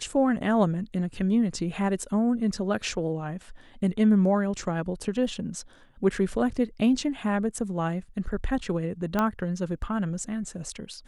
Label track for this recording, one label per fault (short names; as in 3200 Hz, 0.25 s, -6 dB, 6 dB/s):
9.190000	9.190000	pop -12 dBFS